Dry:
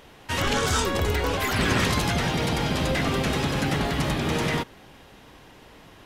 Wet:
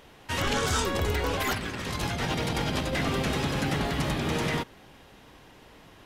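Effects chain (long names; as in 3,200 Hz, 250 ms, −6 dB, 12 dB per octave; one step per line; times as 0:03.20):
0:01.40–0:02.93: compressor whose output falls as the input rises −26 dBFS, ratio −0.5
level −3 dB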